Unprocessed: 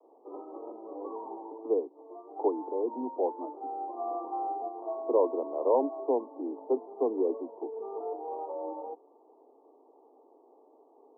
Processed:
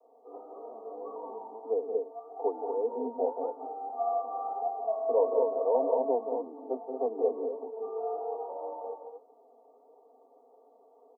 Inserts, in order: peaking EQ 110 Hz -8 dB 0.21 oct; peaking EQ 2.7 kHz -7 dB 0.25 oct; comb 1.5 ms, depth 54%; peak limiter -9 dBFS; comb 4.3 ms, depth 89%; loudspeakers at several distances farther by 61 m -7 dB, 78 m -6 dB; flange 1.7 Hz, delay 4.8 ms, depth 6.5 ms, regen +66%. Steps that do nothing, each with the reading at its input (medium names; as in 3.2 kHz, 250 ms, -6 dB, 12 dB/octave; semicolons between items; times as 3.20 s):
peaking EQ 110 Hz: input has nothing below 210 Hz; peaking EQ 2.7 kHz: input has nothing above 1.2 kHz; peak limiter -9 dBFS: peak at its input -13.0 dBFS